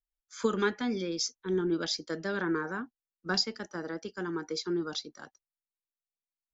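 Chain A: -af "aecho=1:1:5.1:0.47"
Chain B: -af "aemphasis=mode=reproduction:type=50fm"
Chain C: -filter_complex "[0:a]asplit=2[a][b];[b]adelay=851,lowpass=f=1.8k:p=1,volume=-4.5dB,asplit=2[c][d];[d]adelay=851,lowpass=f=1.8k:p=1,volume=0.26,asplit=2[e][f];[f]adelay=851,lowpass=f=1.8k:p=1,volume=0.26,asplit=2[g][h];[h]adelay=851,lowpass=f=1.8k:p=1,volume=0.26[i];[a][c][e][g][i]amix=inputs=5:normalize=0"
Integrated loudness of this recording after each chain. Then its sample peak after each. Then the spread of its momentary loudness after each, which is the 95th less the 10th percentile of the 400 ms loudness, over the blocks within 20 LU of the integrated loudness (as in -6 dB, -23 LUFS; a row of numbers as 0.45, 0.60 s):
-31.5, -33.5, -32.5 LUFS; -13.5, -15.0, -14.0 dBFS; 11, 12, 12 LU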